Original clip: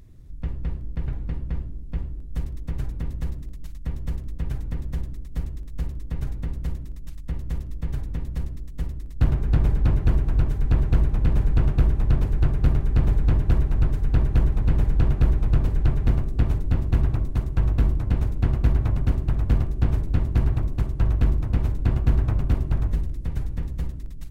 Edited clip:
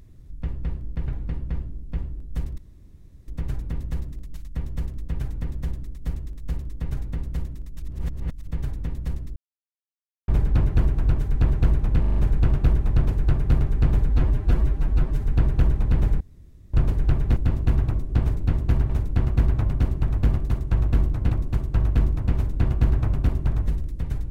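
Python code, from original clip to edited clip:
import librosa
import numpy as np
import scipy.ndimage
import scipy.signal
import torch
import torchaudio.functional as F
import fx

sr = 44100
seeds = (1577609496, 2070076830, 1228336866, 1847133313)

y = fx.edit(x, sr, fx.insert_room_tone(at_s=2.58, length_s=0.7),
    fx.reverse_span(start_s=7.12, length_s=0.65),
    fx.silence(start_s=8.66, length_s=0.92),
    fx.stutter(start_s=11.3, slice_s=0.04, count=5),
    fx.stretch_span(start_s=13.23, length_s=0.75, factor=1.5),
    fx.room_tone_fill(start_s=14.97, length_s=0.53),
    fx.cut(start_s=16.13, length_s=0.49),
    fx.swap(start_s=17.35, length_s=0.81, other_s=19.76, other_length_s=0.8), tone=tone)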